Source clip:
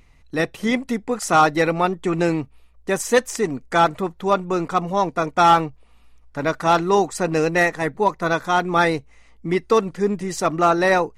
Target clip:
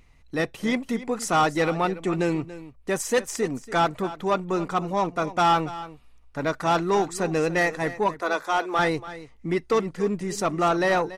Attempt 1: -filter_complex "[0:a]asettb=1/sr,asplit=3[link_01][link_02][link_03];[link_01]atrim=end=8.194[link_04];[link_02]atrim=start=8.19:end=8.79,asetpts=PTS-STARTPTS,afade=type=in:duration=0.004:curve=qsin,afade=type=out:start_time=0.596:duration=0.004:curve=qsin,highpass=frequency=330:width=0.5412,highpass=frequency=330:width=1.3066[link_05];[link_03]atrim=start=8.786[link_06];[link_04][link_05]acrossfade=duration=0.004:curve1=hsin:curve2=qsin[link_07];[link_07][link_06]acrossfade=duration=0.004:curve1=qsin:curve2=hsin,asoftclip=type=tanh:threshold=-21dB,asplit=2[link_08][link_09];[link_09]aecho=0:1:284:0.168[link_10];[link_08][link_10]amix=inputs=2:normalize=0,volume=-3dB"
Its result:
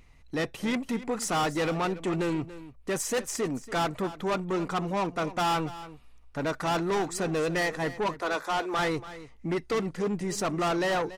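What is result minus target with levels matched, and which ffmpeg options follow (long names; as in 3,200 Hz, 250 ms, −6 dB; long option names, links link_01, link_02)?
soft clipping: distortion +9 dB
-filter_complex "[0:a]asettb=1/sr,asplit=3[link_01][link_02][link_03];[link_01]atrim=end=8.194[link_04];[link_02]atrim=start=8.19:end=8.79,asetpts=PTS-STARTPTS,afade=type=in:duration=0.004:curve=qsin,afade=type=out:start_time=0.596:duration=0.004:curve=qsin,highpass=frequency=330:width=0.5412,highpass=frequency=330:width=1.3066[link_05];[link_03]atrim=start=8.786[link_06];[link_04][link_05]acrossfade=duration=0.004:curve1=hsin:curve2=qsin[link_07];[link_07][link_06]acrossfade=duration=0.004:curve1=qsin:curve2=hsin,asoftclip=type=tanh:threshold=-11dB,asplit=2[link_08][link_09];[link_09]aecho=0:1:284:0.168[link_10];[link_08][link_10]amix=inputs=2:normalize=0,volume=-3dB"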